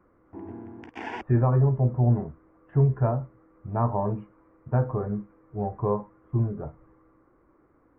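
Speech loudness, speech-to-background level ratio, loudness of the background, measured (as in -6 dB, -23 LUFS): -26.5 LUFS, 13.5 dB, -40.0 LUFS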